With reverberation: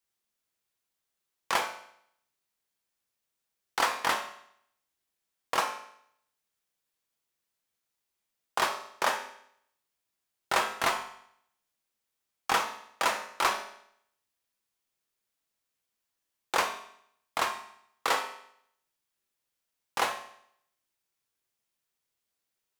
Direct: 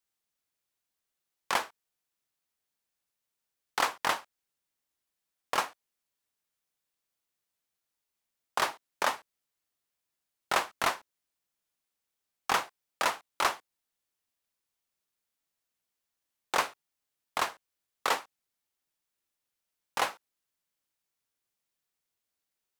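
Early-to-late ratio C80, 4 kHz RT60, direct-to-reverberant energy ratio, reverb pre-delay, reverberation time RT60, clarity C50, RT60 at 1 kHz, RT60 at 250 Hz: 11.5 dB, 0.65 s, 3.0 dB, 5 ms, 0.70 s, 8.5 dB, 0.70 s, 0.70 s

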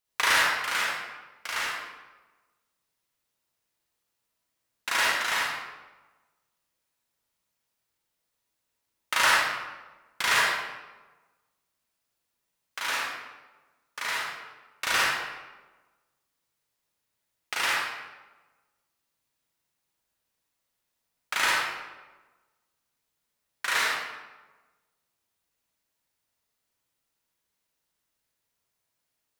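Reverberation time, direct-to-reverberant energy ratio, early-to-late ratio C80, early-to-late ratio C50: 1.2 s, -6.0 dB, 0.5 dB, -3.0 dB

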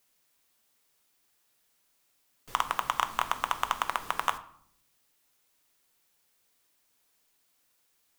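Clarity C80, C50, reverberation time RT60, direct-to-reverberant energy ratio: 18.0 dB, 15.5 dB, 0.70 s, 9.0 dB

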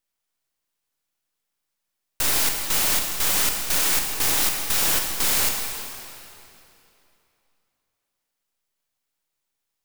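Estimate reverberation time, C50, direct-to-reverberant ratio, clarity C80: 2.9 s, 3.5 dB, 2.5 dB, 4.5 dB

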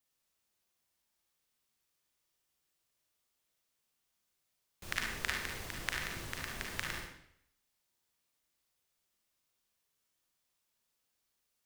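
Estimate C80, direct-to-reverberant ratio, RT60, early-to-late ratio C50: 6.0 dB, -1.0 dB, 0.70 s, 1.0 dB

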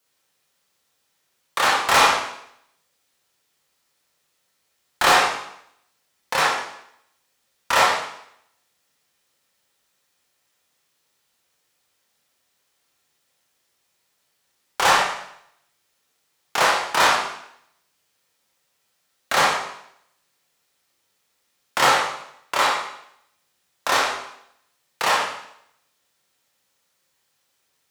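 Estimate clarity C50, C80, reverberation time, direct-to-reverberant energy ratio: 2.0 dB, 6.0 dB, 0.75 s, -4.5 dB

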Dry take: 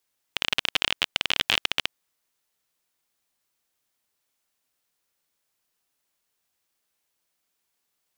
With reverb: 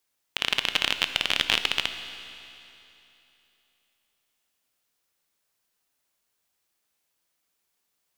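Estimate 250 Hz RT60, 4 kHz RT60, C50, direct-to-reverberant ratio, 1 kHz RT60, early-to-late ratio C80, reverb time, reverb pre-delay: 3.0 s, 3.0 s, 9.0 dB, 8.5 dB, 3.0 s, 10.0 dB, 3.0 s, 15 ms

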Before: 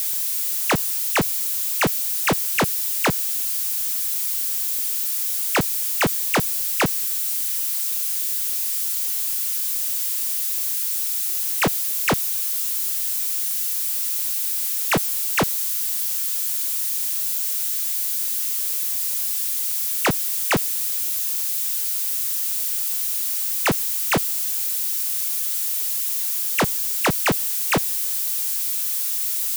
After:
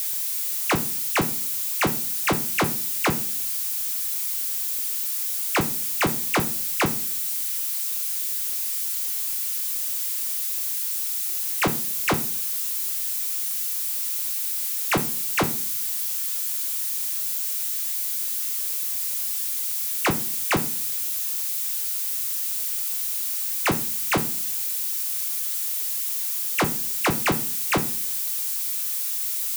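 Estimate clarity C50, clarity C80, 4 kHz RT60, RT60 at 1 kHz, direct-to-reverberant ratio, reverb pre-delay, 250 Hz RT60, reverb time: 16.0 dB, 21.0 dB, 0.45 s, 0.40 s, 5.0 dB, 3 ms, 0.65 s, 0.45 s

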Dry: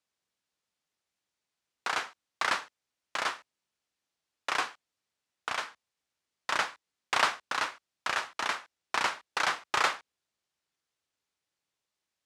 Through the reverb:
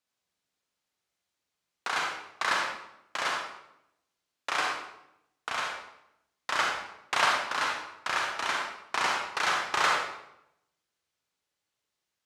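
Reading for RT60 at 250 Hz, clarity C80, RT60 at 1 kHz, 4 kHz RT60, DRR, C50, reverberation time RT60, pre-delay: 0.95 s, 4.5 dB, 0.80 s, 0.65 s, -1.0 dB, 1.0 dB, 0.80 s, 37 ms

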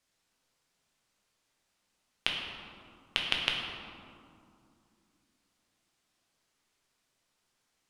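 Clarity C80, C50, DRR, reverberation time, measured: 3.5 dB, 2.0 dB, -1.0 dB, 2.5 s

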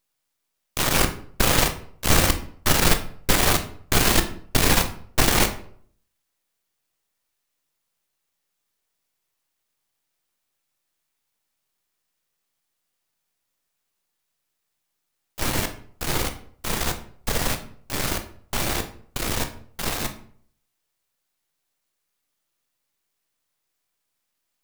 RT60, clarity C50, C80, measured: 0.55 s, 11.5 dB, 16.0 dB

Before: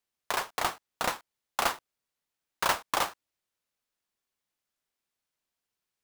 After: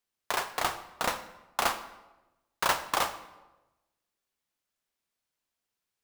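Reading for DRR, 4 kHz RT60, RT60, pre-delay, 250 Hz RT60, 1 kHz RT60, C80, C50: 10.5 dB, 0.75 s, 1.1 s, 25 ms, 1.2 s, 1.0 s, 14.0 dB, 12.0 dB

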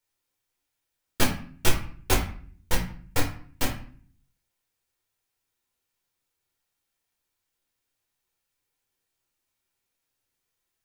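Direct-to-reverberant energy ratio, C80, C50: -1.5 dB, 11.5 dB, 7.5 dB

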